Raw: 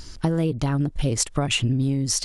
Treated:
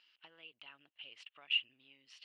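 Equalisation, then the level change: ladder band-pass 3000 Hz, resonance 80%; air absorption 410 m; bell 3500 Hz -11 dB 2.8 oct; +7.5 dB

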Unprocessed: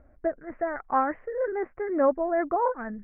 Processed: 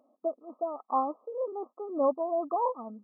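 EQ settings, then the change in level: brick-wall FIR band-pass 210–1300 Hz; bell 370 Hz -6.5 dB 0.59 oct; -2.5 dB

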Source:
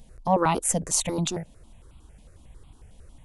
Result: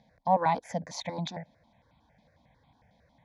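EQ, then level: BPF 200–3300 Hz; fixed phaser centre 1900 Hz, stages 8; 0.0 dB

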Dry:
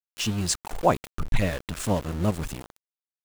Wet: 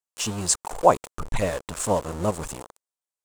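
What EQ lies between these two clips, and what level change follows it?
graphic EQ 500/1000/8000 Hz +8/+9/+12 dB; -4.5 dB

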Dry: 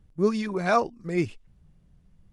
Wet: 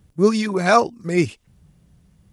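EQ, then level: HPF 58 Hz; high shelf 5200 Hz +9 dB; +7.0 dB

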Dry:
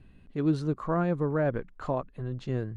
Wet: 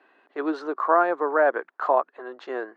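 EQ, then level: steep high-pass 340 Hz 36 dB/oct; air absorption 130 m; band shelf 1100 Hz +9 dB; +5.0 dB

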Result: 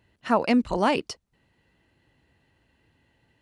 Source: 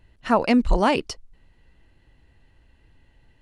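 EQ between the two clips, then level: HPF 110 Hz 12 dB/oct; -2.5 dB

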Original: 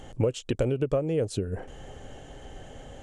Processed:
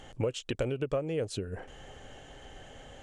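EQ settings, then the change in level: tilt shelf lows -6 dB, about 1100 Hz; high shelf 4600 Hz -10.5 dB; -1.0 dB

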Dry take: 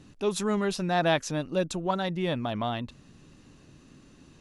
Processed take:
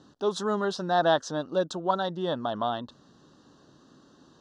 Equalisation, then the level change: HPF 560 Hz 6 dB/oct; Butterworth band-stop 2300 Hz, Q 1.3; air absorption 130 m; +5.5 dB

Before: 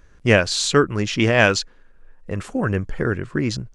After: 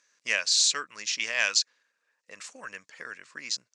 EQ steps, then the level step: dynamic EQ 340 Hz, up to -6 dB, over -29 dBFS, Q 1; speaker cabinet 250–6900 Hz, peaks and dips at 370 Hz -8 dB, 770 Hz -6 dB, 1400 Hz -5 dB, 3200 Hz -6 dB; differentiator; +5.5 dB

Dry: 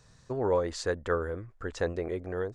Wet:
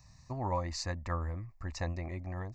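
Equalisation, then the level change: bell 69 Hz +6 dB 0.9 oct; high shelf 8200 Hz +5.5 dB; fixed phaser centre 2200 Hz, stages 8; 0.0 dB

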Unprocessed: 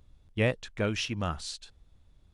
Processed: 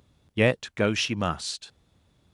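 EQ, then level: HPF 120 Hz 12 dB/oct; +6.0 dB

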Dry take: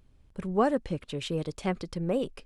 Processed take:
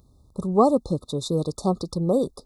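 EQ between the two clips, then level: HPF 46 Hz; brick-wall FIR band-stop 1300–3500 Hz; high shelf 9800 Hz +6.5 dB; +7.0 dB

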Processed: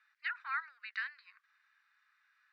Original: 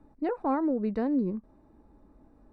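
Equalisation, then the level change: steep high-pass 1500 Hz 48 dB/oct; air absorption 190 m; +14.0 dB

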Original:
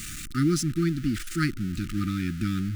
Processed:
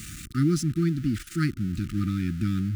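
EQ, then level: HPF 54 Hz; low shelf 270 Hz +8 dB; -4.0 dB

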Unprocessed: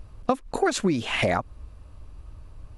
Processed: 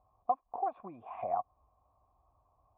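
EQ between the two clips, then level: vocal tract filter a; HPF 49 Hz; 0.0 dB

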